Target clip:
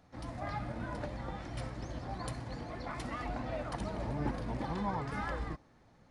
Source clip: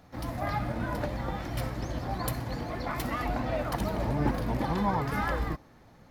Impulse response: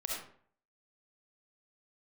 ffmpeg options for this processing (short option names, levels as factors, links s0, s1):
-af "aresample=22050,aresample=44100,volume=0.422"